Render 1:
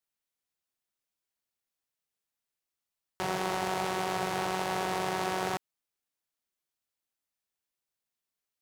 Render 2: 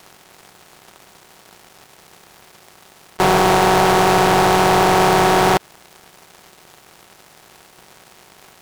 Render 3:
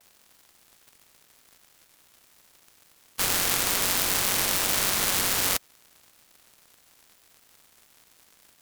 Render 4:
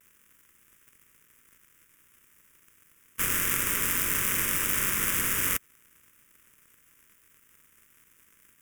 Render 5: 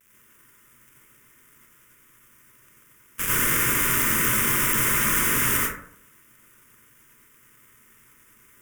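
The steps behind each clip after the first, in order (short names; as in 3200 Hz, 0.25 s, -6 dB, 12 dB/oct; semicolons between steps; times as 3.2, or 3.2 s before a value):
per-bin compression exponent 0.4; sample leveller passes 3; gain +7.5 dB
spectral contrast lowered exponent 0.14; vibrato 0.47 Hz 29 cents; ring modulator with a swept carrier 520 Hz, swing 30%, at 4.8 Hz; gain -8 dB
fixed phaser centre 1800 Hz, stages 4
plate-style reverb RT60 0.63 s, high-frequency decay 0.4×, pre-delay 75 ms, DRR -6 dB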